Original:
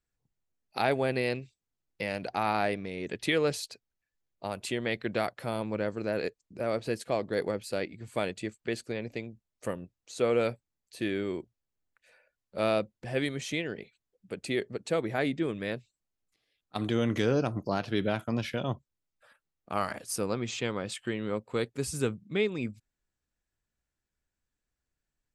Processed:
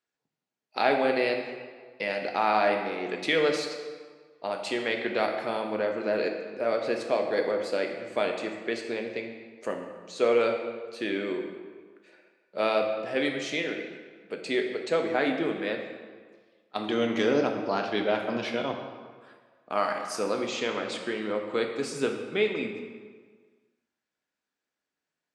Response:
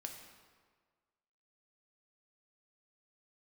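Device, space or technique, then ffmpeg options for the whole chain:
supermarket ceiling speaker: -filter_complex "[0:a]highpass=300,lowpass=5500[s0];[1:a]atrim=start_sample=2205[s1];[s0][s1]afir=irnorm=-1:irlink=0,volume=2.51"

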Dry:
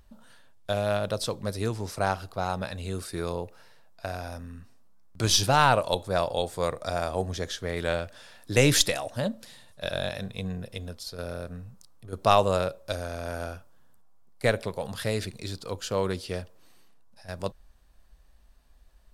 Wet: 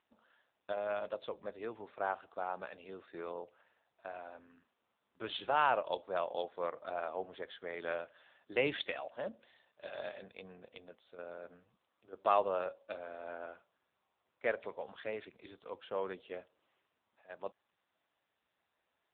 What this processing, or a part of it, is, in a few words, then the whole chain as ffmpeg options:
telephone: -filter_complex "[0:a]asplit=3[s0][s1][s2];[s0]afade=t=out:st=11.63:d=0.02[s3];[s1]lowpass=f=10000:w=0.5412,lowpass=f=10000:w=1.3066,afade=t=in:st=11.63:d=0.02,afade=t=out:st=12.11:d=0.02[s4];[s2]afade=t=in:st=12.11:d=0.02[s5];[s3][s4][s5]amix=inputs=3:normalize=0,highpass=390,lowpass=3400,volume=0.422" -ar 8000 -c:a libopencore_amrnb -b:a 6700

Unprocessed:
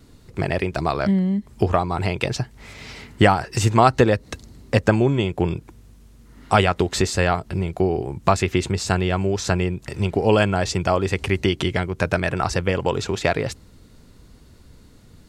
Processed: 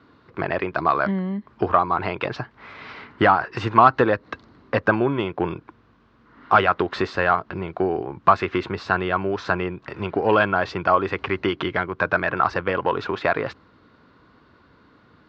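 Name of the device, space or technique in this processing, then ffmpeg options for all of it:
overdrive pedal into a guitar cabinet: -filter_complex "[0:a]asplit=2[s0][s1];[s1]highpass=f=720:p=1,volume=3.98,asoftclip=type=tanh:threshold=0.841[s2];[s0][s2]amix=inputs=2:normalize=0,lowpass=f=1500:p=1,volume=0.501,highpass=84,equalizer=f=300:t=q:w=4:g=4,equalizer=f=1100:t=q:w=4:g=9,equalizer=f=1500:t=q:w=4:g=7,lowpass=f=4500:w=0.5412,lowpass=f=4500:w=1.3066,volume=0.631"

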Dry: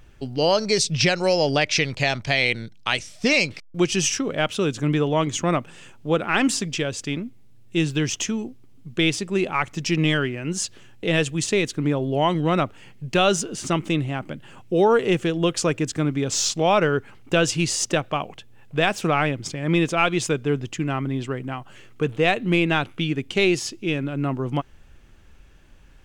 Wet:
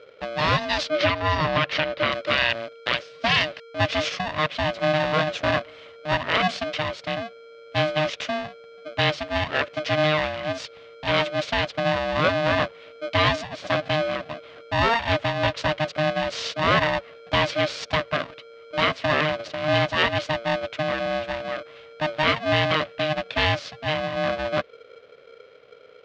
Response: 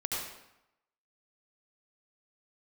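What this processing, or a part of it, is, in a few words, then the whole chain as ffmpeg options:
ring modulator pedal into a guitar cabinet: -filter_complex "[0:a]aeval=exprs='val(0)*sgn(sin(2*PI*460*n/s))':c=same,highpass=98,equalizer=f=210:t=q:w=4:g=-8,equalizer=f=340:t=q:w=4:g=-8,equalizer=f=580:t=q:w=4:g=7,equalizer=f=850:t=q:w=4:g=-8,lowpass=f=4100:w=0.5412,lowpass=f=4100:w=1.3066,asettb=1/sr,asplit=3[s0][s1][s2];[s0]atrim=end=0.904[s3];[s1]atrim=start=0.9:end=2.12,asetpts=PTS-STARTPTS,afade=t=in:d=0.004:c=qsin,afade=t=out:st=1.216:d=0.004:c=qsin,aemphasis=mode=reproduction:type=50fm[s4];[s2]atrim=start=2.116[s5];[s3][s4]acrossfade=d=0.004:c1=hsin:c2=qsin[s6];[s6][s5]acrossfade=d=0.004:c1=qsin:c2=hsin"

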